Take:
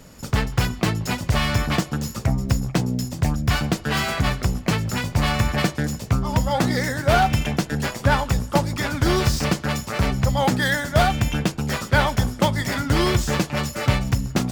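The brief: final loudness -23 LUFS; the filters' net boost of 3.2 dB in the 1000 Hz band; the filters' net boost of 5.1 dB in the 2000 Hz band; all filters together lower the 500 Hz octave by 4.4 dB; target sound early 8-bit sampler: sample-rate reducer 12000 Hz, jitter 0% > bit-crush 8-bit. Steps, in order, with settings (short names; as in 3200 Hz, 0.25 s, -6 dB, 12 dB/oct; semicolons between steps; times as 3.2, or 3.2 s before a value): bell 500 Hz -8.5 dB; bell 1000 Hz +6 dB; bell 2000 Hz +5 dB; sample-rate reducer 12000 Hz, jitter 0%; bit-crush 8-bit; gain -2 dB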